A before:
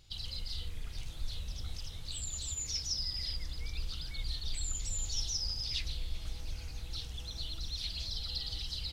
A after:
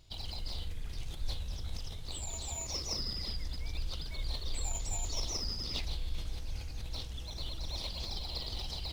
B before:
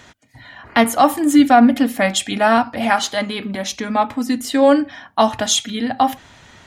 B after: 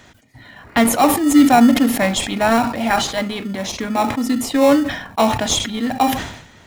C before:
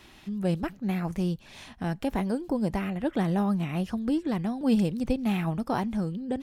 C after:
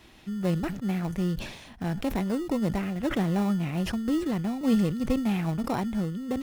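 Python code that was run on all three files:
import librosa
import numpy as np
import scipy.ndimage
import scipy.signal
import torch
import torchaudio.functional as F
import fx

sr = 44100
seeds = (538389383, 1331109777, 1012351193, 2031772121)

p1 = fx.sample_hold(x, sr, seeds[0], rate_hz=1600.0, jitter_pct=0)
p2 = x + F.gain(torch.from_numpy(p1), -8.0).numpy()
p3 = fx.sustainer(p2, sr, db_per_s=73.0)
y = F.gain(torch.from_numpy(p3), -2.5).numpy()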